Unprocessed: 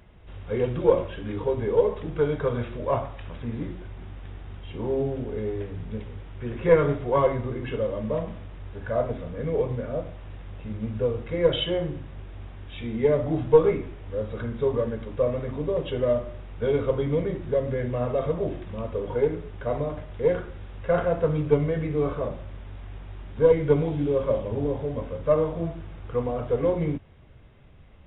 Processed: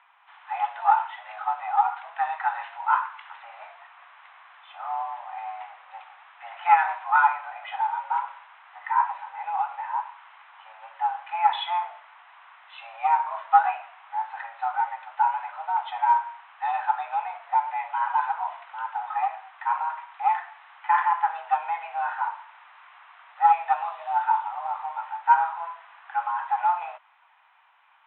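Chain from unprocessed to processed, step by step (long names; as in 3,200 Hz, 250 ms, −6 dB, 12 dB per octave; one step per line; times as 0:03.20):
single-sideband voice off tune +340 Hz 560–3,300 Hz
high-frequency loss of the air 450 metres
level +7.5 dB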